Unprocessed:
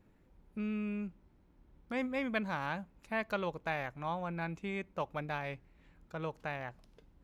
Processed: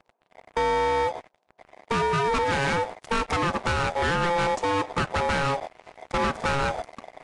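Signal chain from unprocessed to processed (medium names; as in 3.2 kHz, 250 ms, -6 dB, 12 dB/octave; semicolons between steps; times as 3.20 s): gate -54 dBFS, range -13 dB; peaking EQ 2.6 kHz -14 dB 0.82 oct; in parallel at +3 dB: gain riding 0.5 s; on the sum: ring modulator 690 Hz; compression 4:1, threshold -42 dBFS, peak gain reduction 14 dB; waveshaping leveller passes 5; trim +9 dB; Vorbis 48 kbps 22.05 kHz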